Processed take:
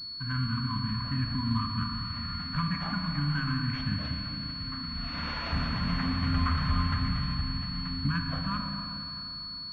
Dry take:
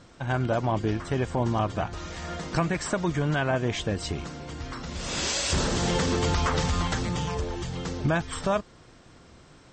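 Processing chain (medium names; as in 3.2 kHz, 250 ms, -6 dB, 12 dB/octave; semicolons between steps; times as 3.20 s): FFT band-reject 300–970 Hz; Schroeder reverb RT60 3.5 s, combs from 27 ms, DRR 2 dB; class-D stage that switches slowly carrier 4.4 kHz; trim -3.5 dB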